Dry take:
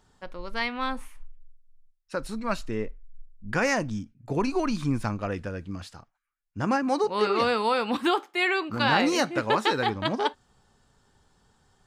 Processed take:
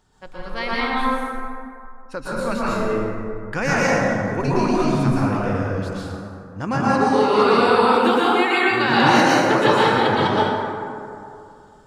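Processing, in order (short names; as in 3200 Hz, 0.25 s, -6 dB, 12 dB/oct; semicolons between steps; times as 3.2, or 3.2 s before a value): plate-style reverb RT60 2.5 s, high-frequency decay 0.4×, pre-delay 0.105 s, DRR -7.5 dB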